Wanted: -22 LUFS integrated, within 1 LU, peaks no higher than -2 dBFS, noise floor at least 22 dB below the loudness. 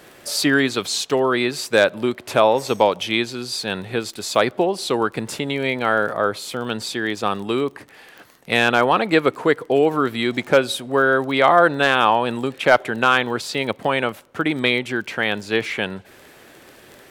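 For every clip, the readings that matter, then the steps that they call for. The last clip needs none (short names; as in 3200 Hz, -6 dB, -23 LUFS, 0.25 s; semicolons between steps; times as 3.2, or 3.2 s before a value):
ticks 22/s; loudness -20.0 LUFS; peak -2.5 dBFS; loudness target -22.0 LUFS
-> de-click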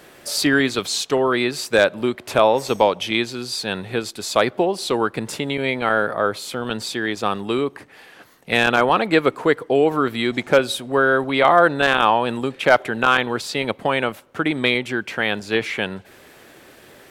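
ticks 0.35/s; loudness -20.0 LUFS; peak -2.5 dBFS; loudness target -22.0 LUFS
-> gain -2 dB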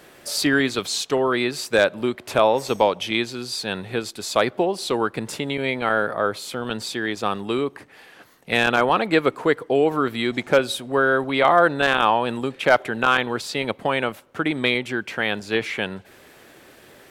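loudness -22.0 LUFS; peak -4.5 dBFS; noise floor -50 dBFS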